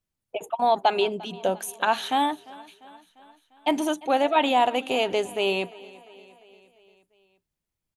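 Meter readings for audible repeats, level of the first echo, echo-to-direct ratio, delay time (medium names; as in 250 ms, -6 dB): 3, -21.5 dB, -19.5 dB, 348 ms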